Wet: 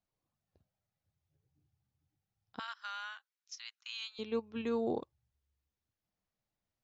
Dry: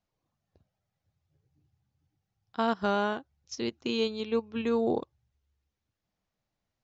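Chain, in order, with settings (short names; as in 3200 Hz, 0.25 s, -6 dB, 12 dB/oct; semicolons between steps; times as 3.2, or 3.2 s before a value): 2.59–4.19 inverse Chebyshev high-pass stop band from 380 Hz, stop band 60 dB; gain -6.5 dB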